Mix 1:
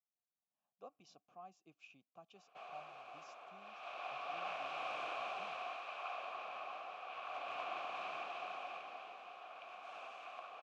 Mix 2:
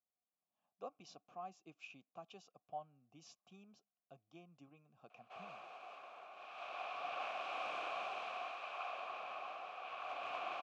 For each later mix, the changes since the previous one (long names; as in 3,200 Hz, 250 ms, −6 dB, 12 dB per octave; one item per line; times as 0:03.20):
speech +6.0 dB
background: entry +2.75 s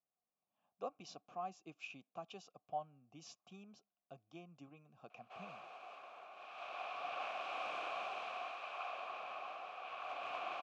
speech +4.5 dB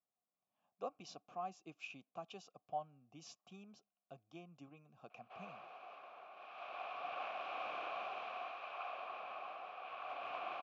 background: add high-frequency loss of the air 160 metres